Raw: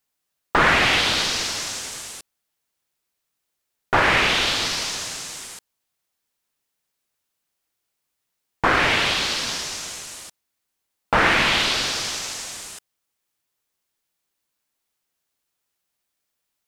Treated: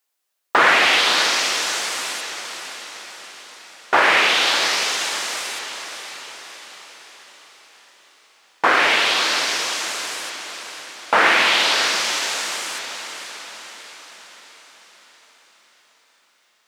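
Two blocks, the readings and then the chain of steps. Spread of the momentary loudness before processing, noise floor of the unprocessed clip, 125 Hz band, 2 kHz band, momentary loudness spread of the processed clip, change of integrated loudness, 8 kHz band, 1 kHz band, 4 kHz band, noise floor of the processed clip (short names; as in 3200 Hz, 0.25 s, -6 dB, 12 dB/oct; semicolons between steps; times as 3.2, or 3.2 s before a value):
18 LU, -79 dBFS, under -10 dB, +3.5 dB, 21 LU, +2.0 dB, +3.5 dB, +3.5 dB, +3.5 dB, -62 dBFS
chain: HPF 390 Hz 12 dB/oct; on a send: diffused feedback echo 0.56 s, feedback 53%, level -9 dB; on the sum: gain +3 dB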